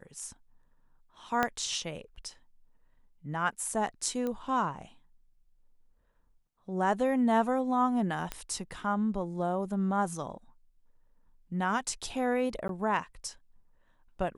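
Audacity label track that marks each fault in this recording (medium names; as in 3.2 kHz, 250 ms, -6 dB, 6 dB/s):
1.430000	1.430000	pop -13 dBFS
4.270000	4.270000	pop -22 dBFS
8.320000	8.320000	pop -18 dBFS
12.680000	12.690000	dropout 12 ms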